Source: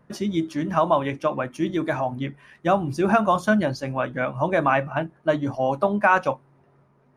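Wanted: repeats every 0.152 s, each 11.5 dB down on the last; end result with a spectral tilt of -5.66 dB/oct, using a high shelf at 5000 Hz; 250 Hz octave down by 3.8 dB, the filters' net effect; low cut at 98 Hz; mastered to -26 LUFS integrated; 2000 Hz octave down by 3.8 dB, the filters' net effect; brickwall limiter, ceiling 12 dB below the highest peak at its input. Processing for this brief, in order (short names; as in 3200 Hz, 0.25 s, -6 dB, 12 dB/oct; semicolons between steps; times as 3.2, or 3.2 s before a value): HPF 98 Hz; bell 250 Hz -5 dB; bell 2000 Hz -7 dB; high shelf 5000 Hz +8 dB; limiter -19.5 dBFS; feedback echo 0.152 s, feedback 27%, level -11.5 dB; gain +4.5 dB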